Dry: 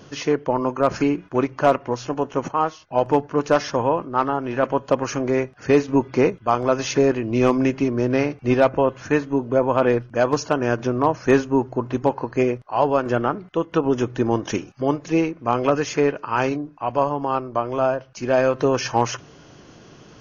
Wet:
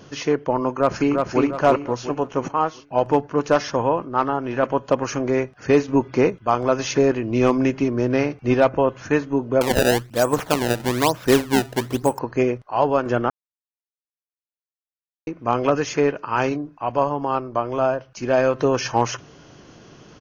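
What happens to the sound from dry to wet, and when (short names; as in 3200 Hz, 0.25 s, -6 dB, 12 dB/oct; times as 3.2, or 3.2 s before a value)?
0.72–1.4 echo throw 0.35 s, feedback 40%, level -3.5 dB
9.61–12.19 decimation with a swept rate 23×, swing 160% 1.1 Hz
13.3–15.27 mute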